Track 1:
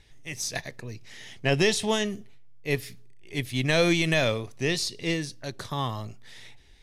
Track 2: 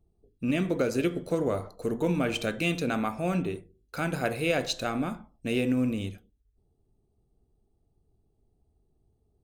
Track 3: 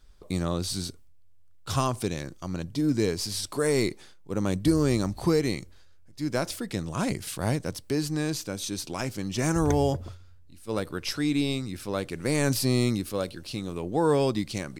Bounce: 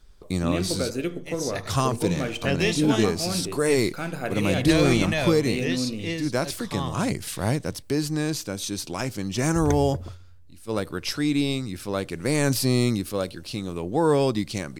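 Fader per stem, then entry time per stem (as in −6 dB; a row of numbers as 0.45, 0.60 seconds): −2.5, −1.5, +2.5 decibels; 1.00, 0.00, 0.00 seconds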